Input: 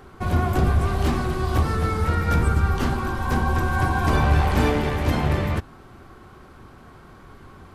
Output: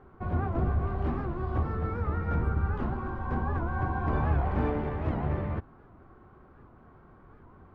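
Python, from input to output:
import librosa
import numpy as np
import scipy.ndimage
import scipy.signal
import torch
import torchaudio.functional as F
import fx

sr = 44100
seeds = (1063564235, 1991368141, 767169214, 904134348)

y = scipy.signal.sosfilt(scipy.signal.butter(2, 1400.0, 'lowpass', fs=sr, output='sos'), x)
y = fx.record_warp(y, sr, rpm=78.0, depth_cents=160.0)
y = y * librosa.db_to_amplitude(-8.0)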